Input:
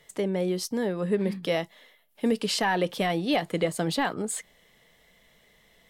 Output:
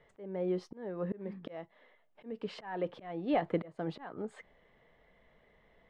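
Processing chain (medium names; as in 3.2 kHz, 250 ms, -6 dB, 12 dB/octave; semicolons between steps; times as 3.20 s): low-pass 1.5 kHz 12 dB/octave; peaking EQ 180 Hz -4 dB 0.89 oct; slow attack 456 ms; trim -1 dB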